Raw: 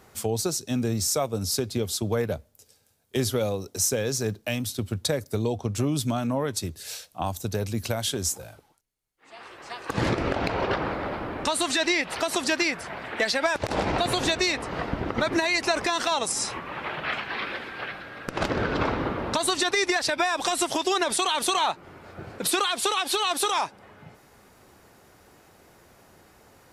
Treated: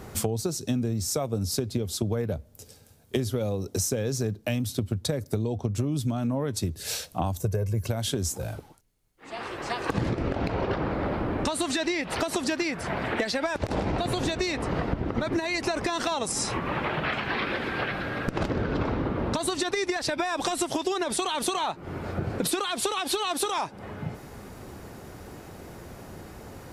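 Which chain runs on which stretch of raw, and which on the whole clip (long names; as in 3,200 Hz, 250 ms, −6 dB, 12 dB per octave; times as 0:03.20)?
0:07.41–0:07.87: parametric band 3,800 Hz −13.5 dB 0.72 octaves + comb filter 1.9 ms, depth 78%
whole clip: low-shelf EQ 470 Hz +10 dB; downward compressor 6 to 1, threshold −32 dBFS; level +6.5 dB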